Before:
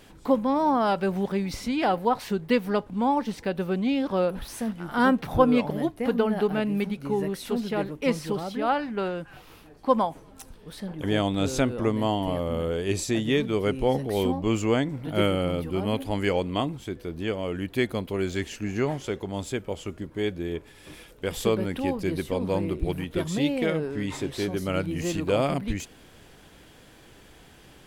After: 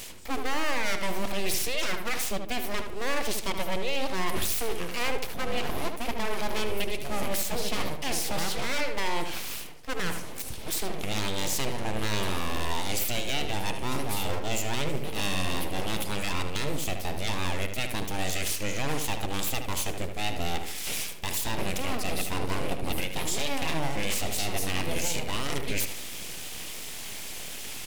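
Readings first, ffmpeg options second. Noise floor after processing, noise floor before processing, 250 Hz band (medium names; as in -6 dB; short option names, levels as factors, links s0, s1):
-37 dBFS, -52 dBFS, -10.0 dB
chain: -filter_complex "[0:a]areverse,acompressor=threshold=0.0224:ratio=12,areverse,aeval=exprs='abs(val(0))':c=same,aexciter=amount=2.9:drive=4.8:freq=2100,alimiter=level_in=1.5:limit=0.0631:level=0:latency=1:release=49,volume=0.668,asplit=2[s0][s1];[s1]adelay=75,lowpass=f=2900:p=1,volume=0.473,asplit=2[s2][s3];[s3]adelay=75,lowpass=f=2900:p=1,volume=0.43,asplit=2[s4][s5];[s5]adelay=75,lowpass=f=2900:p=1,volume=0.43,asplit=2[s6][s7];[s7]adelay=75,lowpass=f=2900:p=1,volume=0.43,asplit=2[s8][s9];[s9]adelay=75,lowpass=f=2900:p=1,volume=0.43[s10];[s0][s2][s4][s6][s8][s10]amix=inputs=6:normalize=0,volume=2.82"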